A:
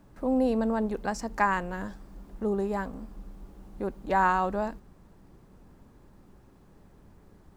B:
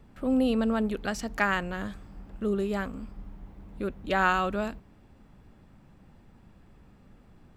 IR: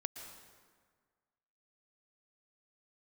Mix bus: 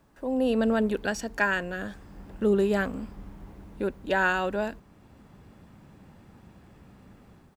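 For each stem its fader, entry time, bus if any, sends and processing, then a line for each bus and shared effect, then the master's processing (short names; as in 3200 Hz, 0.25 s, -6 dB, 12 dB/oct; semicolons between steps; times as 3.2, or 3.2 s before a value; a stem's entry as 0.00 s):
-1.0 dB, 0.00 s, no send, low shelf 380 Hz -11 dB
-11.0 dB, 0.5 ms, polarity flipped, no send, HPF 63 Hz; AGC gain up to 15.5 dB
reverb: off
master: dry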